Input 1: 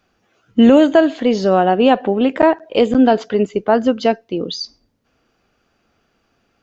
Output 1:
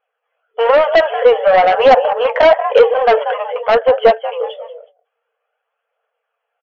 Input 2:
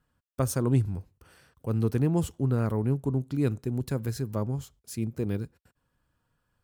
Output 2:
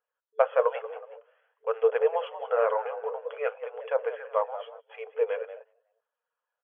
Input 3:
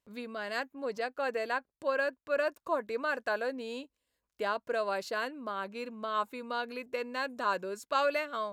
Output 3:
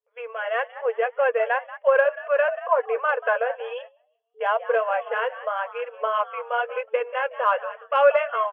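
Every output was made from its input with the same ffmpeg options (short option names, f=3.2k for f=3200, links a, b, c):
-filter_complex "[0:a]asplit=2[a][b];[b]asplit=3[c][d][e];[c]adelay=185,afreqshift=74,volume=-15dB[f];[d]adelay=370,afreqshift=148,volume=-24.1dB[g];[e]adelay=555,afreqshift=222,volume=-33.2dB[h];[f][g][h]amix=inputs=3:normalize=0[i];[a][i]amix=inputs=2:normalize=0,agate=range=-17dB:threshold=-44dB:ratio=16:detection=peak,highshelf=f=2.2k:g=-9,acontrast=86,afftfilt=real='re*between(b*sr/4096,440,3400)':imag='im*between(b*sr/4096,440,3400)':win_size=4096:overlap=0.75,flanger=delay=1.1:depth=8.1:regen=-45:speed=0.99:shape=triangular,aeval=exprs='0.668*sin(PI/2*1.78*val(0)/0.668)':c=same,aphaser=in_gain=1:out_gain=1:delay=2.7:decay=0.3:speed=0.49:type=triangular,volume=-1dB"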